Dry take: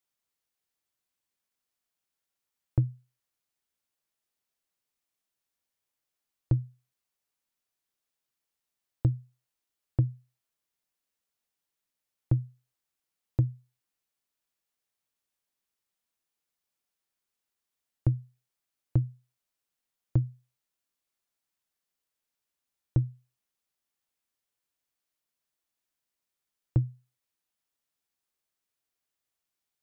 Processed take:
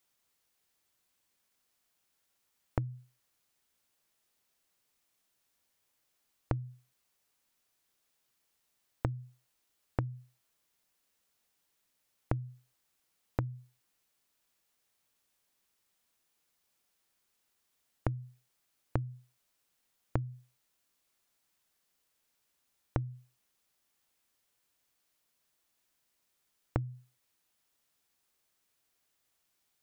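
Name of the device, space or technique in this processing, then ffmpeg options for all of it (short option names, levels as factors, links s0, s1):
serial compression, peaks first: -af "acompressor=threshold=0.0355:ratio=6,acompressor=threshold=0.0141:ratio=6,volume=2.66"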